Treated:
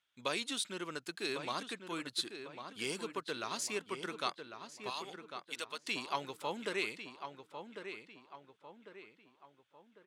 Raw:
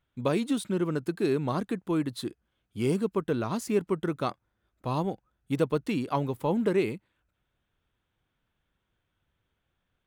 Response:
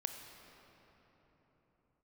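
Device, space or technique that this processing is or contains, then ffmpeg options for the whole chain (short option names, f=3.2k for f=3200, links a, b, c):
piezo pickup straight into a mixer: -filter_complex "[0:a]lowpass=5.1k,aderivative,asettb=1/sr,asplit=3[a][b][c];[a]atrim=end=4.904[d];[b]atrim=start=4.9:end=5.86,asetpts=PTS-STARTPTS,afade=t=in:d=0.004:c=qsin,afade=t=out:st=0.956:d=0.004:c=qsin,highpass=f=1.4k:p=1[e];[c]atrim=start=5.856[f];[d][e]acrossfade=d=0.004:c1=hsin:c2=qsin[g];[g][f]acrossfade=d=0.004:c1=qsin:c2=hsin,asplit=2[h][i];[i]adelay=1099,lowpass=f=2.8k:p=1,volume=-8dB,asplit=2[j][k];[k]adelay=1099,lowpass=f=2.8k:p=1,volume=0.44,asplit=2[l][m];[m]adelay=1099,lowpass=f=2.8k:p=1,volume=0.44,asplit=2[n][o];[o]adelay=1099,lowpass=f=2.8k:p=1,volume=0.44,asplit=2[p][q];[q]adelay=1099,lowpass=f=2.8k:p=1,volume=0.44[r];[h][j][l][n][p][r]amix=inputs=6:normalize=0,volume=11dB"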